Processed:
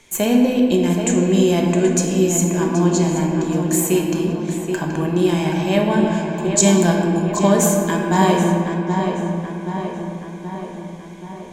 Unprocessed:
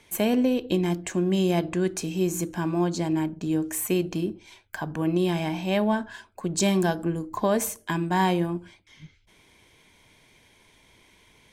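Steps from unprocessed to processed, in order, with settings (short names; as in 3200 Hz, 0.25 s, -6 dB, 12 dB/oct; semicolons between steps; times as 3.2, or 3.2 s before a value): bell 7000 Hz +12.5 dB 0.25 oct; darkening echo 0.777 s, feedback 59%, low-pass 3800 Hz, level -7 dB; on a send at -1 dB: reverb RT60 2.6 s, pre-delay 5 ms; on the sum: gain +4 dB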